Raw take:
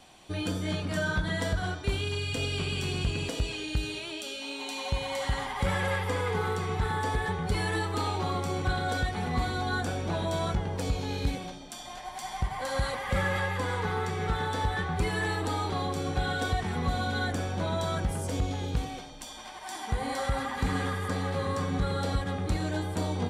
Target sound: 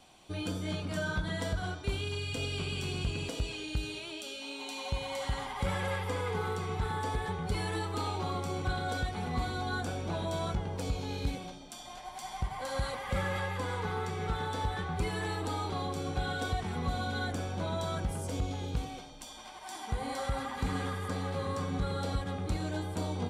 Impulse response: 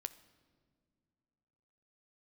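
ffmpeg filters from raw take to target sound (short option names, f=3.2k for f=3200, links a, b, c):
-af "equalizer=f=1.8k:w=6.9:g=-6,volume=-4dB"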